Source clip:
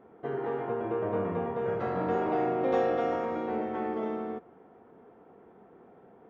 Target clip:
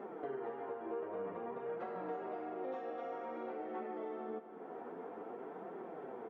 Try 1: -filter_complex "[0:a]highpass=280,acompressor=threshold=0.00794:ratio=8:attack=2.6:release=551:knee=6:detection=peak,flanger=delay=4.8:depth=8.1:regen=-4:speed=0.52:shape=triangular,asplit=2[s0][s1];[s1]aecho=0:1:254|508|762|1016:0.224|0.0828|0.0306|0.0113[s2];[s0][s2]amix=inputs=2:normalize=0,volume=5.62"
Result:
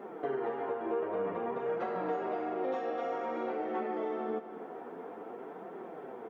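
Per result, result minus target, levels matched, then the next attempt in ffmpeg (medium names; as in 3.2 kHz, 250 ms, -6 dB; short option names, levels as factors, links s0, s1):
compression: peak gain reduction -7.5 dB; 4 kHz band +3.0 dB
-filter_complex "[0:a]highpass=280,acompressor=threshold=0.00282:ratio=8:attack=2.6:release=551:knee=6:detection=peak,flanger=delay=4.8:depth=8.1:regen=-4:speed=0.52:shape=triangular,asplit=2[s0][s1];[s1]aecho=0:1:254|508|762|1016:0.224|0.0828|0.0306|0.0113[s2];[s0][s2]amix=inputs=2:normalize=0,volume=5.62"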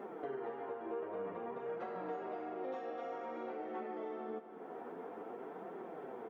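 4 kHz band +3.0 dB
-filter_complex "[0:a]highpass=280,highshelf=f=4600:g=-9.5,acompressor=threshold=0.00282:ratio=8:attack=2.6:release=551:knee=6:detection=peak,flanger=delay=4.8:depth=8.1:regen=-4:speed=0.52:shape=triangular,asplit=2[s0][s1];[s1]aecho=0:1:254|508|762|1016:0.224|0.0828|0.0306|0.0113[s2];[s0][s2]amix=inputs=2:normalize=0,volume=5.62"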